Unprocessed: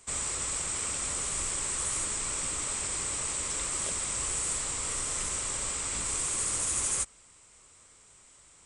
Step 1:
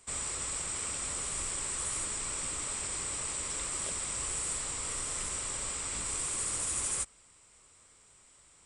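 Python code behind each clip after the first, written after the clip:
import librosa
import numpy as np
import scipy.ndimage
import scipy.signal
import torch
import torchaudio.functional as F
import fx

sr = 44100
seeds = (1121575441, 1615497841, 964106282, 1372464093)

y = fx.notch(x, sr, hz=6400.0, q=10.0)
y = y * librosa.db_to_amplitude(-3.0)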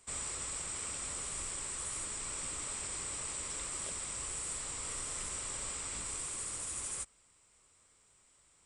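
y = fx.rider(x, sr, range_db=10, speed_s=0.5)
y = y * librosa.db_to_amplitude(-4.5)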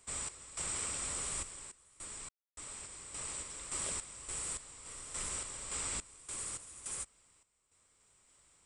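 y = fx.tremolo_random(x, sr, seeds[0], hz=3.5, depth_pct=100)
y = y * librosa.db_to_amplitude(2.5)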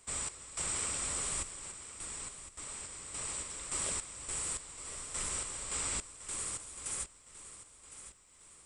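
y = fx.echo_feedback(x, sr, ms=1060, feedback_pct=42, wet_db=-13)
y = y * librosa.db_to_amplitude(2.5)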